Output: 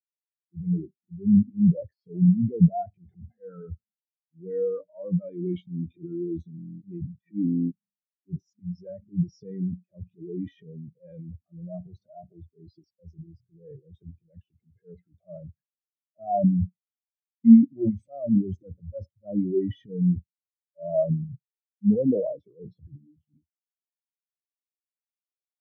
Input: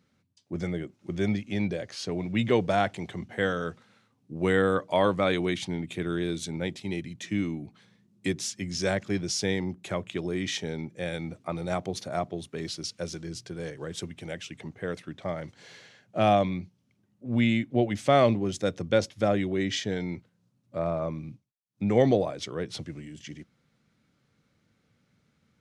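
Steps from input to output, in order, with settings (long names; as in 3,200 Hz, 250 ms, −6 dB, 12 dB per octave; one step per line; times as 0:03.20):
parametric band 82 Hz +5.5 dB 0.26 octaves
in parallel at +1 dB: downward compressor, threshold −33 dBFS, peak gain reduction 16.5 dB
on the sum: brickwall limiter −17 dBFS, peak gain reduction 10 dB
transient designer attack −10 dB, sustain +12 dB
on a send at −15.5 dB: convolution reverb, pre-delay 39 ms
on the sum: buffer that repeats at 0:06.56/0:07.46/0:17.19, samples 1,024, times 10
every bin expanded away from the loudest bin 4 to 1
level +4.5 dB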